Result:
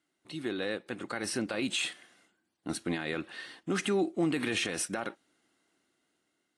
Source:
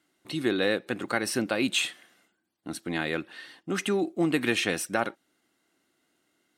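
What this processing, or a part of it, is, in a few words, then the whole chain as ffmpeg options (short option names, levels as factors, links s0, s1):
low-bitrate web radio: -af "dynaudnorm=f=430:g=7:m=3.98,alimiter=limit=0.224:level=0:latency=1:release=62,volume=0.398" -ar 24000 -c:a aac -b:a 48k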